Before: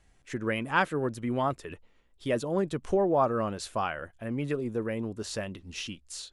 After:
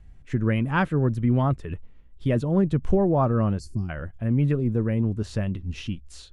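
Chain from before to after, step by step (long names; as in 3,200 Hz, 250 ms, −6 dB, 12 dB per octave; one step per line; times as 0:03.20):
low-shelf EQ 150 Hz +3.5 dB
gain on a spectral selection 0:03.59–0:03.89, 390–4,200 Hz −27 dB
bass and treble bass +14 dB, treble −8 dB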